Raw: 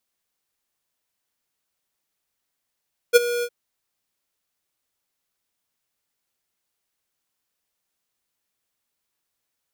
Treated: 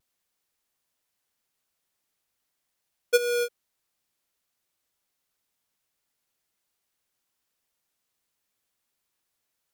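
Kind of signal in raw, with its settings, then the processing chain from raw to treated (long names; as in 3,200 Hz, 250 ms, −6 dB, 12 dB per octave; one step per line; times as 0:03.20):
note with an ADSR envelope square 480 Hz, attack 31 ms, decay 22 ms, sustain −15 dB, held 0.30 s, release 60 ms −9.5 dBFS
downward compressor 3 to 1, threshold −20 dBFS
pitch vibrato 0.44 Hz 18 cents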